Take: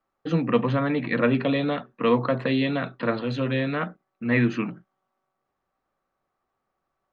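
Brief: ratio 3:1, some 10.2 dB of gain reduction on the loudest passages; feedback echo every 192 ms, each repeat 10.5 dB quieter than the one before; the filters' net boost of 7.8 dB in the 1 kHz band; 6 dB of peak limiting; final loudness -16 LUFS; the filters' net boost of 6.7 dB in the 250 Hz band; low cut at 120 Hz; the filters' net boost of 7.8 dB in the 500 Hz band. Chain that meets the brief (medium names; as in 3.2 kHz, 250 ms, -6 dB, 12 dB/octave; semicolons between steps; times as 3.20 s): high-pass 120 Hz; peaking EQ 250 Hz +6 dB; peaking EQ 500 Hz +5.5 dB; peaking EQ 1 kHz +8 dB; compression 3:1, threshold -21 dBFS; peak limiter -14.5 dBFS; feedback delay 192 ms, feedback 30%, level -10.5 dB; trim +9 dB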